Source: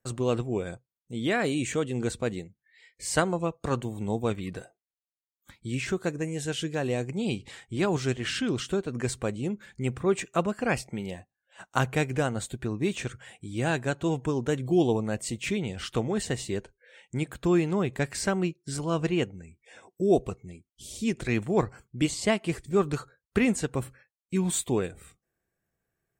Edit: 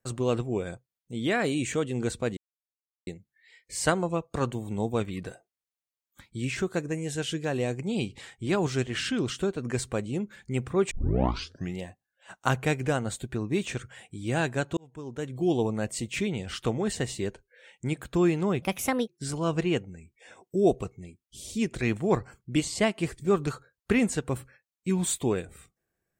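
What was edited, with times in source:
0:02.37: splice in silence 0.70 s
0:10.21: tape start 0.89 s
0:14.07–0:15.04: fade in
0:17.92–0:18.54: play speed 135%

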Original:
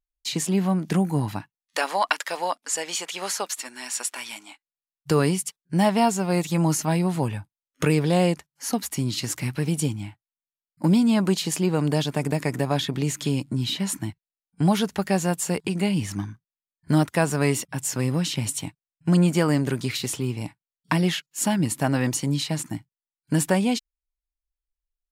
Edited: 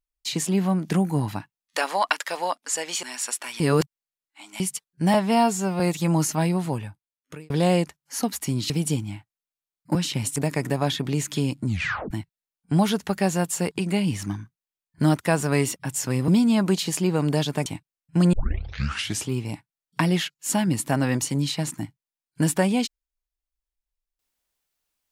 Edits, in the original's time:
0:03.03–0:03.75: remove
0:04.32–0:05.32: reverse
0:05.86–0:06.30: time-stretch 1.5×
0:06.96–0:08.00: fade out
0:09.20–0:09.62: remove
0:10.87–0:12.25: swap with 0:18.17–0:18.58
0:13.54: tape stop 0.46 s
0:19.25: tape start 0.95 s

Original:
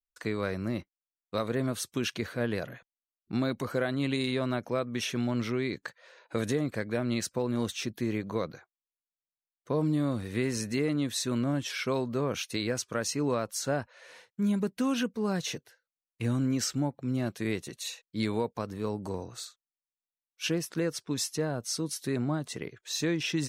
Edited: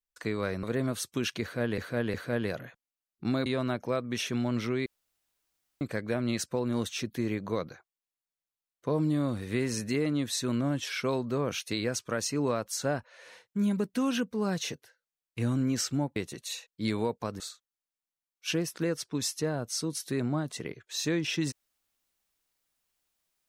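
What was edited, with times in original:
0:00.63–0:01.43: remove
0:02.22–0:02.58: repeat, 3 plays
0:03.54–0:04.29: remove
0:05.69–0:06.64: fill with room tone
0:16.99–0:17.51: remove
0:18.75–0:19.36: remove

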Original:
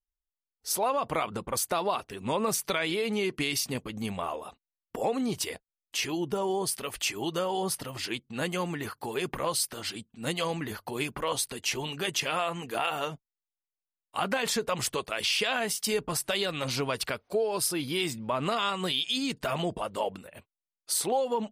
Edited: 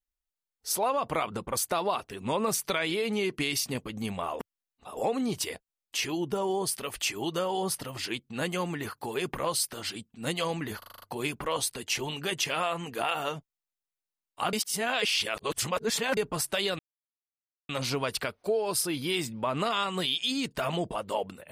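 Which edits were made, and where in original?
0:04.39–0:04.97: reverse
0:10.78: stutter 0.04 s, 7 plays
0:14.29–0:15.93: reverse
0:16.55: splice in silence 0.90 s

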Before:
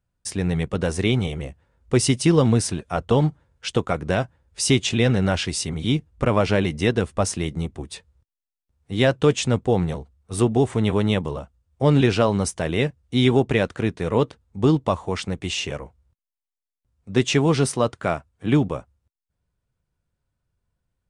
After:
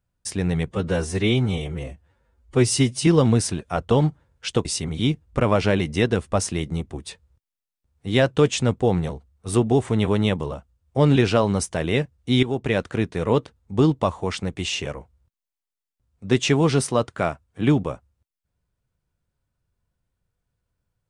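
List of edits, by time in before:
0:00.67–0:02.27: time-stretch 1.5×
0:03.85–0:05.50: remove
0:13.28–0:13.68: fade in, from −12.5 dB

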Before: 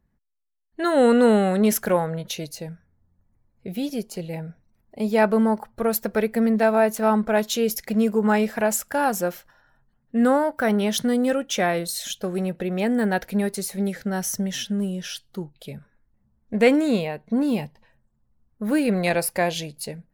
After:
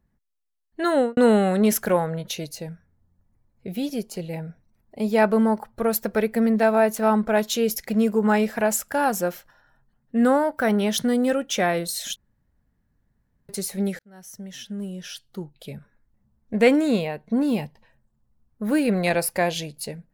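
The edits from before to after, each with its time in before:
0:00.92–0:01.17: fade out and dull
0:12.16–0:13.49: fill with room tone
0:13.99–0:15.73: fade in

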